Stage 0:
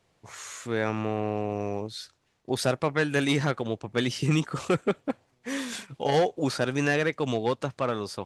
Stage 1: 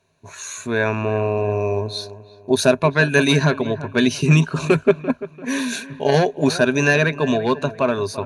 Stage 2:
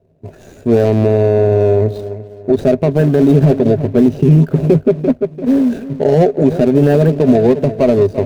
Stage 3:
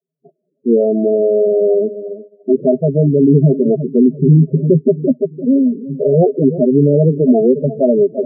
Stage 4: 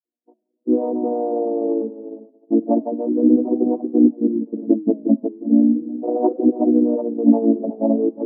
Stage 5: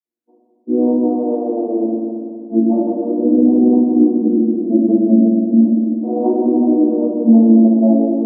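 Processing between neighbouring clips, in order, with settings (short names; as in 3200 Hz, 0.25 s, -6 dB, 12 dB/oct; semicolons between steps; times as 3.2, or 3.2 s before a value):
spectral noise reduction 6 dB; ripple EQ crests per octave 1.5, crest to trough 12 dB; dark delay 0.341 s, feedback 33%, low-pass 2400 Hz, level -15.5 dB; gain +7 dB
median filter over 41 samples; resonant low shelf 790 Hz +8.5 dB, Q 1.5; maximiser +5 dB; gain -1 dB
FFT band-pass 130–1000 Hz; gate -31 dBFS, range -27 dB; loudest bins only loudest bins 8
chord vocoder major triad, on A#3; vibrato 0.35 Hz 91 cents; flange 0.47 Hz, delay 4.7 ms, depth 6 ms, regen -89%
reverb RT60 2.2 s, pre-delay 5 ms, DRR -9 dB; gain -8.5 dB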